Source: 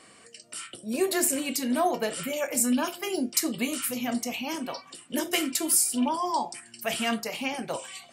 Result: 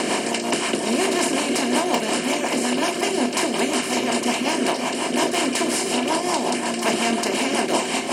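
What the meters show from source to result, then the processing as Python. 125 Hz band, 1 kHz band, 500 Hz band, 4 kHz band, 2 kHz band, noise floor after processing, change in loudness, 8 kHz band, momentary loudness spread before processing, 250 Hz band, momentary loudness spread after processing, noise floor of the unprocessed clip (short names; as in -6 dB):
+9.5 dB, +8.0 dB, +9.0 dB, +9.5 dB, +10.0 dB, -27 dBFS, +6.0 dB, +2.5 dB, 12 LU, +7.0 dB, 2 LU, -54 dBFS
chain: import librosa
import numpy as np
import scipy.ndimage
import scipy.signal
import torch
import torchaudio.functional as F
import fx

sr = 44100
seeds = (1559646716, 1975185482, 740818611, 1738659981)

y = fx.bin_compress(x, sr, power=0.2)
y = fx.air_absorb(y, sr, metres=110.0)
y = fx.dereverb_blind(y, sr, rt60_s=0.52)
y = 10.0 ** (-9.5 / 20.0) * (np.abs((y / 10.0 ** (-9.5 / 20.0) + 3.0) % 4.0 - 2.0) - 1.0)
y = fx.high_shelf(y, sr, hz=6200.0, db=9.5)
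y = fx.echo_multitap(y, sr, ms=(107, 527), db=(-12.0, -8.0))
y = fx.rotary(y, sr, hz=5.5)
y = fx.rider(y, sr, range_db=10, speed_s=2.0)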